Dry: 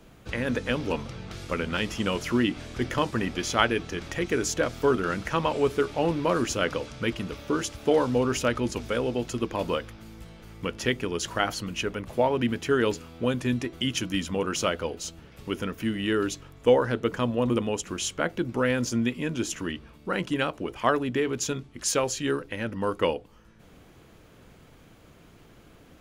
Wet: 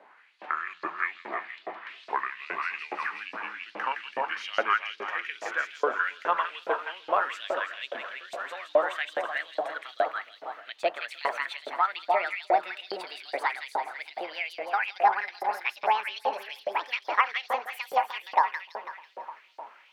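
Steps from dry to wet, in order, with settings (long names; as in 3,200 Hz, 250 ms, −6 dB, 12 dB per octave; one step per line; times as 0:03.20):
gliding playback speed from 64% → 197%
echo with a time of its own for lows and highs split 960 Hz, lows 303 ms, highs 165 ms, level −5 dB
in parallel at −1 dB: downward compressor, threshold −36 dBFS, peak gain reduction 19.5 dB
on the sum: auto-filter high-pass saw up 2.4 Hz 590–4,900 Hz
three-way crossover with the lows and the highs turned down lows −21 dB, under 150 Hz, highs −23 dB, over 2,800 Hz
level −3 dB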